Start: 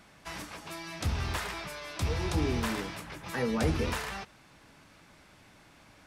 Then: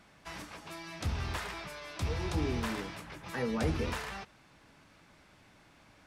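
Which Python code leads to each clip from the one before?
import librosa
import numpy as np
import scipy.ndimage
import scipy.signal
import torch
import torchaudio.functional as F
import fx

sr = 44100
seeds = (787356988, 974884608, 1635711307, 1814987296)

y = fx.high_shelf(x, sr, hz=7600.0, db=-5.0)
y = y * librosa.db_to_amplitude(-3.0)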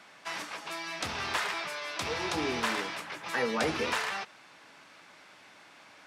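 y = fx.weighting(x, sr, curve='A')
y = y * librosa.db_to_amplitude(7.5)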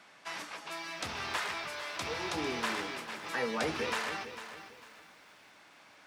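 y = fx.echo_crushed(x, sr, ms=450, feedback_pct=35, bits=9, wet_db=-11.0)
y = y * librosa.db_to_amplitude(-3.5)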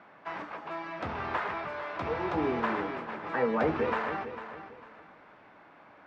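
y = scipy.signal.sosfilt(scipy.signal.butter(2, 1300.0, 'lowpass', fs=sr, output='sos'), x)
y = y * librosa.db_to_amplitude(7.0)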